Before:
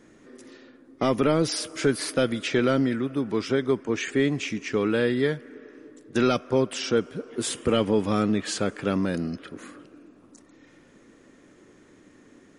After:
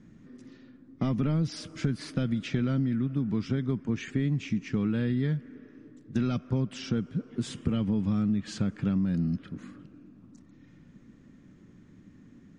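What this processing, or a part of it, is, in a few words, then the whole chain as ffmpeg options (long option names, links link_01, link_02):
jukebox: -af "lowpass=7100,lowshelf=frequency=280:width_type=q:width=1.5:gain=14,acompressor=threshold=-15dB:ratio=6,lowpass=9100,volume=-8.5dB"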